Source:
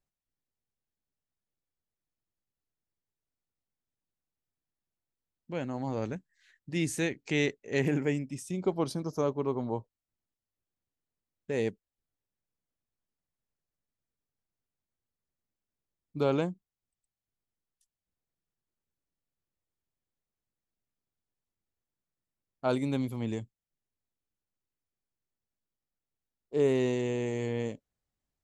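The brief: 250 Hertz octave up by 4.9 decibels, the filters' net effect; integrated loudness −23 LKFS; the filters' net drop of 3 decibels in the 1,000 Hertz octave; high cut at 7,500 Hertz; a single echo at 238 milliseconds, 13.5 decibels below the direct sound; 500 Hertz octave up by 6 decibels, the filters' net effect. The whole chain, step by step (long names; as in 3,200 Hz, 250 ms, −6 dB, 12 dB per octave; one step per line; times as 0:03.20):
low-pass filter 7,500 Hz
parametric band 250 Hz +4 dB
parametric band 500 Hz +7.5 dB
parametric band 1,000 Hz −7.5 dB
single-tap delay 238 ms −13.5 dB
level +4 dB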